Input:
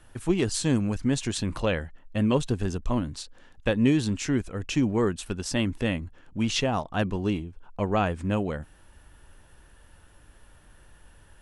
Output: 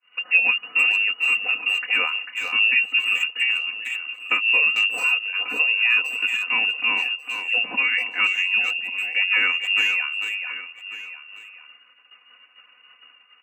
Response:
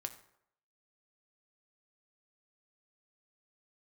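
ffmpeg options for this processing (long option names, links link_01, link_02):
-filter_complex "[0:a]lowpass=frequency=2500:width_type=q:width=0.5098,lowpass=frequency=2500:width_type=q:width=0.6013,lowpass=frequency=2500:width_type=q:width=0.9,lowpass=frequency=2500:width_type=q:width=2.563,afreqshift=-2900,highpass=270,asplit=2[link_01][link_02];[link_02]adelay=380,highpass=300,lowpass=3400,asoftclip=type=hard:threshold=-19dB,volume=-7dB[link_03];[link_01][link_03]amix=inputs=2:normalize=0,asplit=2[link_04][link_05];[link_05]acompressor=threshold=-37dB:ratio=6,volume=-0.5dB[link_06];[link_04][link_06]amix=inputs=2:normalize=0,atempo=0.85,agate=range=-33dB:threshold=-40dB:ratio=3:detection=peak,aecho=1:1:4:0.99,asplit=2[link_07][link_08];[link_08]aecho=0:1:1141:0.178[link_09];[link_07][link_09]amix=inputs=2:normalize=0"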